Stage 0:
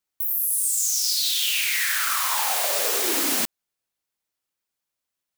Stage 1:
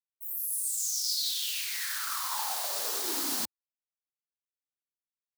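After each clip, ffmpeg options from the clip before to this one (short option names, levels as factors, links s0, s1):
-af "agate=range=0.0224:threshold=0.112:ratio=3:detection=peak,afwtdn=0.01,firequalizer=gain_entry='entry(300,0);entry(530,-5);entry(870,3);entry(2300,-6);entry(4300,4);entry(7000,1)':delay=0.05:min_phase=1,volume=0.473"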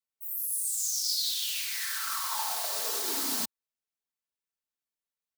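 -af "aecho=1:1:4.5:0.42"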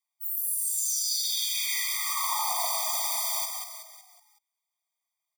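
-filter_complex "[0:a]alimiter=level_in=1.19:limit=0.0631:level=0:latency=1,volume=0.841,asplit=2[s0][s1];[s1]asplit=5[s2][s3][s4][s5][s6];[s2]adelay=186,afreqshift=120,volume=0.531[s7];[s3]adelay=372,afreqshift=240,volume=0.234[s8];[s4]adelay=558,afreqshift=360,volume=0.102[s9];[s5]adelay=744,afreqshift=480,volume=0.0452[s10];[s6]adelay=930,afreqshift=600,volume=0.02[s11];[s7][s8][s9][s10][s11]amix=inputs=5:normalize=0[s12];[s0][s12]amix=inputs=2:normalize=0,afftfilt=real='re*eq(mod(floor(b*sr/1024/630),2),1)':imag='im*eq(mod(floor(b*sr/1024/630),2),1)':win_size=1024:overlap=0.75,volume=2.66"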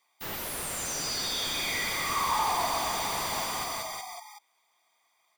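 -filter_complex "[0:a]asplit=2[s0][s1];[s1]highpass=f=720:p=1,volume=39.8,asoftclip=type=tanh:threshold=0.168[s2];[s0][s2]amix=inputs=2:normalize=0,lowpass=f=1400:p=1,volume=0.501"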